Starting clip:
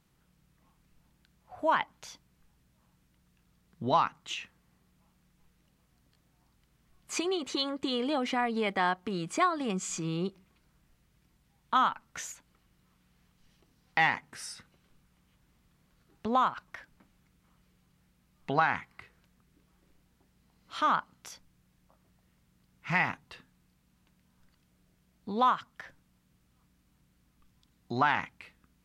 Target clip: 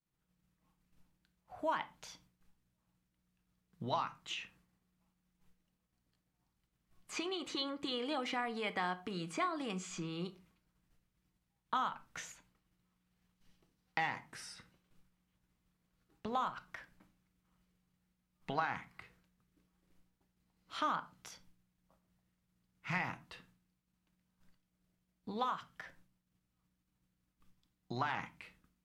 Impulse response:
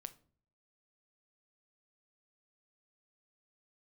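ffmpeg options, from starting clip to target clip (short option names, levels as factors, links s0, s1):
-filter_complex "[0:a]acrossover=split=870|4700[s0][s1][s2];[s0]acompressor=threshold=0.0158:ratio=4[s3];[s1]acompressor=threshold=0.0224:ratio=4[s4];[s2]acompressor=threshold=0.00282:ratio=4[s5];[s3][s4][s5]amix=inputs=3:normalize=0,agate=range=0.0224:threshold=0.001:ratio=3:detection=peak[s6];[1:a]atrim=start_sample=2205,afade=t=out:st=0.19:d=0.01,atrim=end_sample=8820[s7];[s6][s7]afir=irnorm=-1:irlink=0,volume=1.19"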